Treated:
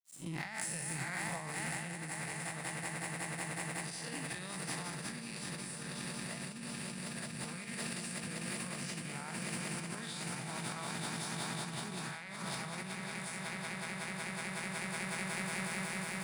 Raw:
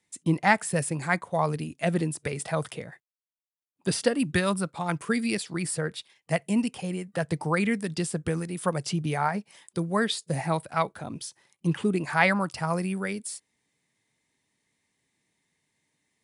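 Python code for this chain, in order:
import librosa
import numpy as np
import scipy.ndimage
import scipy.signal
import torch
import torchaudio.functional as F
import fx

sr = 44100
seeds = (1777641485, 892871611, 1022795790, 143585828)

y = fx.spec_blur(x, sr, span_ms=133.0)
y = fx.tone_stack(y, sr, knobs='5-5-5')
y = fx.echo_swell(y, sr, ms=185, loudest=8, wet_db=-8)
y = np.sign(y) * np.maximum(np.abs(y) - 10.0 ** (-59.5 / 20.0), 0.0)
y = fx.low_shelf(y, sr, hz=170.0, db=6.0, at=(4.88, 7.45))
y = fx.over_compress(y, sr, threshold_db=-47.0, ratio=-1.0)
y = fx.hum_notches(y, sr, base_hz=50, count=4)
y = y * 10.0 ** (6.0 / 20.0)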